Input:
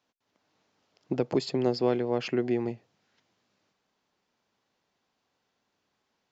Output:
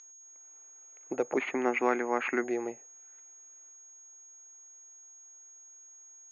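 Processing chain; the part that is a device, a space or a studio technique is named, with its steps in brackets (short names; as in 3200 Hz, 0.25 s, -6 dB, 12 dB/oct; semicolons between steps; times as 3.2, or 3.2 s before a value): toy sound module (decimation joined by straight lines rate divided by 6×; pulse-width modulation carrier 6600 Hz; speaker cabinet 620–3600 Hz, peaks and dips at 670 Hz -5 dB, 1000 Hz -7 dB, 1800 Hz -3 dB, 3000 Hz -9 dB); 1.37–2.44 graphic EQ 125/250/500/1000/2000/4000 Hz -6/+8/-7/+7/+10/-5 dB; gain +6.5 dB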